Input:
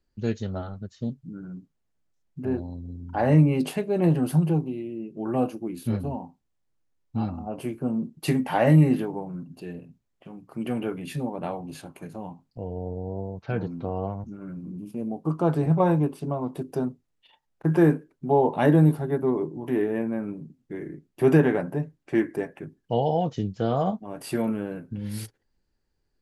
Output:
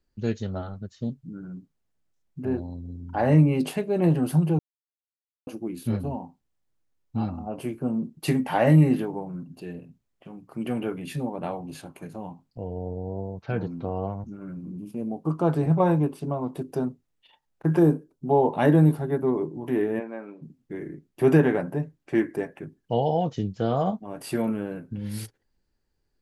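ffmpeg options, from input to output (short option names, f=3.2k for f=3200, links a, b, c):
-filter_complex "[0:a]asettb=1/sr,asplit=3[a][b][c];[a]atrim=end=17.794[d];[b]atrim=start=17.79:end=18.28,asetpts=PTS-STARTPTS,afade=t=in:d=0.004:c=qsin,afade=t=out:st=0.486:d=0.004:c=qsin,equalizer=f=2k:t=o:w=0.98:g=-15[e];[c]atrim=start=18.276[f];[d][e]acrossfade=d=0.004:c1=hsin:c2=qsin[g];[g][f]acrossfade=d=0.004:c1=qsin:c2=hsin,asplit=3[h][i][j];[h]afade=t=out:st=19.99:d=0.02[k];[i]highpass=460,lowpass=4.8k,afade=t=in:st=19.99:d=0.02,afade=t=out:st=20.41:d=0.02[l];[j]afade=t=in:st=20.41:d=0.02[m];[k][l][m]amix=inputs=3:normalize=0,asplit=3[n][o][p];[n]atrim=end=4.59,asetpts=PTS-STARTPTS,afade=t=out:st=4.586:d=0.004:c=hsin[q];[o]atrim=start=4.59:end=5.47,asetpts=PTS-STARTPTS,volume=0[r];[p]atrim=start=5.47,asetpts=PTS-STARTPTS,afade=t=in:d=0.004:c=hsin[s];[q][r][s]concat=n=3:v=0:a=1"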